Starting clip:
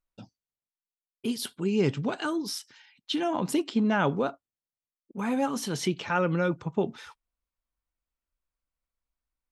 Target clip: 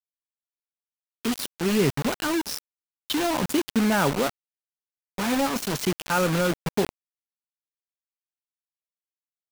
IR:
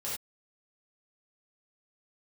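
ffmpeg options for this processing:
-af "acrusher=bits=4:mix=0:aa=0.000001,volume=2.5dB"

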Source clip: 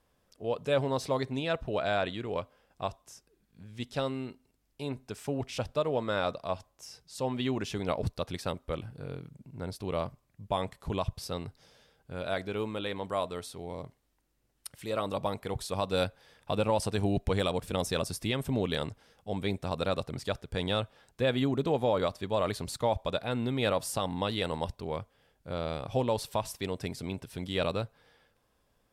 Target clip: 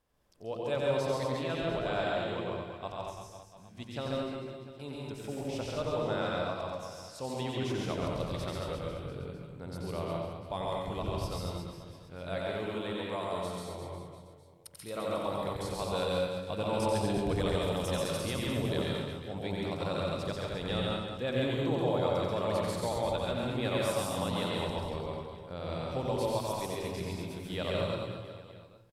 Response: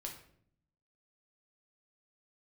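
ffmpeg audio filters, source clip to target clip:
-filter_complex "[0:a]aecho=1:1:90|207|359.1|556.8|813.9:0.631|0.398|0.251|0.158|0.1,asplit=2[link_01][link_02];[1:a]atrim=start_sample=2205,adelay=135[link_03];[link_02][link_03]afir=irnorm=-1:irlink=0,volume=3.5dB[link_04];[link_01][link_04]amix=inputs=2:normalize=0,volume=-7dB"

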